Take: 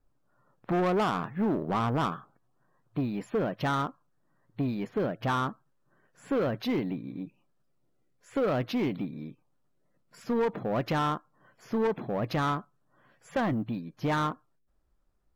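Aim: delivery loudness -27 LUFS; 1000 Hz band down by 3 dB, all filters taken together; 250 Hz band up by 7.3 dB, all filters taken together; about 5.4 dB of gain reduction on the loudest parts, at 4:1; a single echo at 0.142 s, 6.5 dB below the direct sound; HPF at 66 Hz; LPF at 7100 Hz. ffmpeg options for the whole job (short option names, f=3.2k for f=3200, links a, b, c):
-af "highpass=66,lowpass=7.1k,equalizer=f=250:t=o:g=9,equalizer=f=1k:t=o:g=-4.5,acompressor=threshold=-24dB:ratio=4,aecho=1:1:142:0.473,volume=2.5dB"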